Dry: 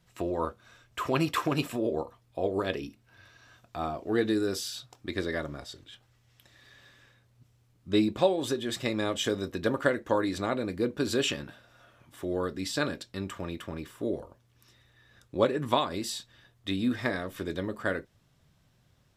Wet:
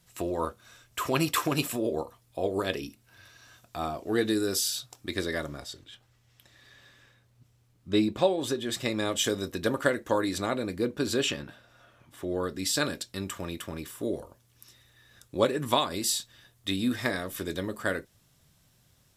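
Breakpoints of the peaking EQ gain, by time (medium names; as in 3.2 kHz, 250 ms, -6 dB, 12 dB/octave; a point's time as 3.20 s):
peaking EQ 12 kHz 1.9 oct
5.46 s +12.5 dB
5.87 s +2.5 dB
8.57 s +2.5 dB
9.18 s +10.5 dB
10.45 s +10.5 dB
11.35 s +1 dB
12.27 s +1 dB
12.72 s +13 dB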